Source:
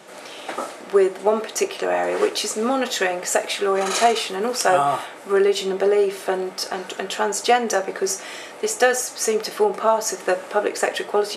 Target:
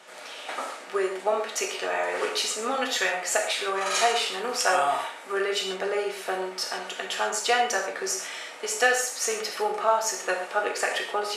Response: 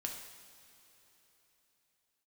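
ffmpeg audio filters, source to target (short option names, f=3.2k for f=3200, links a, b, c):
-filter_complex "[0:a]highpass=f=1.1k:p=1,highshelf=f=6.6k:g=-7[a];[1:a]atrim=start_sample=2205,afade=t=out:st=0.2:d=0.01,atrim=end_sample=9261[b];[a][b]afir=irnorm=-1:irlink=0,volume=1.5dB"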